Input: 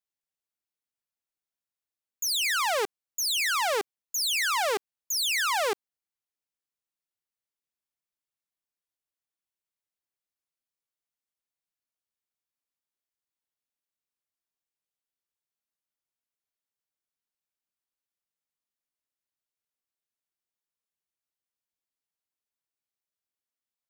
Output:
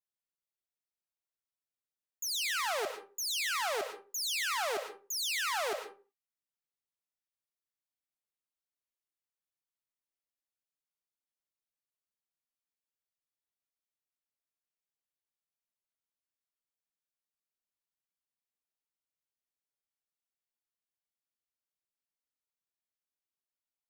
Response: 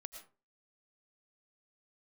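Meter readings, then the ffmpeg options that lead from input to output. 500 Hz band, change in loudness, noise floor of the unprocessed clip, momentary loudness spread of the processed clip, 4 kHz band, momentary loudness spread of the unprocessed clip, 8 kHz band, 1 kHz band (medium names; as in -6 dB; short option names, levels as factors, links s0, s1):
-6.5 dB, -7.0 dB, under -85 dBFS, 8 LU, -6.5 dB, 8 LU, -6.5 dB, -7.0 dB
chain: -filter_complex "[1:a]atrim=start_sample=2205[s0];[0:a][s0]afir=irnorm=-1:irlink=0,volume=0.794"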